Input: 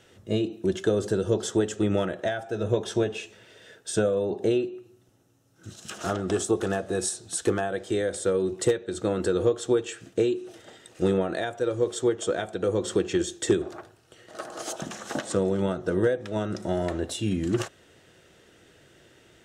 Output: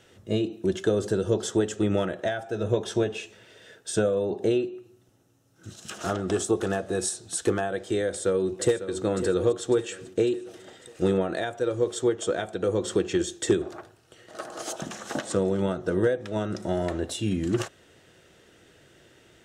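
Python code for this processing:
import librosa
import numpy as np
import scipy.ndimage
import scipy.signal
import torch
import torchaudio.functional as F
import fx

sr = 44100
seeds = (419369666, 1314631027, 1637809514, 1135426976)

y = fx.echo_throw(x, sr, start_s=8.04, length_s=0.93, ms=550, feedback_pct=55, wet_db=-11.5)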